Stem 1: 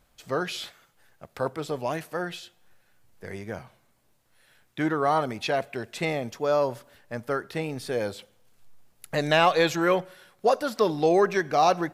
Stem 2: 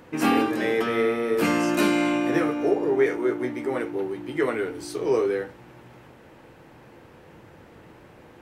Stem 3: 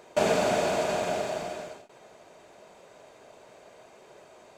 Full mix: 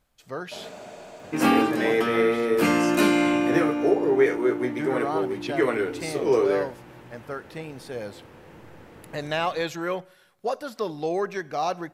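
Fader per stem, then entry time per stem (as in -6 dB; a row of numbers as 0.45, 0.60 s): -6.0, +1.5, -16.5 dB; 0.00, 1.20, 0.35 s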